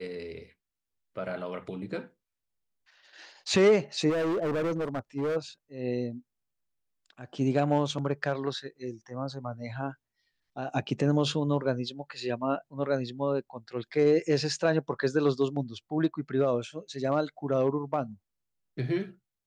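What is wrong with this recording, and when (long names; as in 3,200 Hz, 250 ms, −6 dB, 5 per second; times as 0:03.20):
0:04.09–0:05.37: clipping −26 dBFS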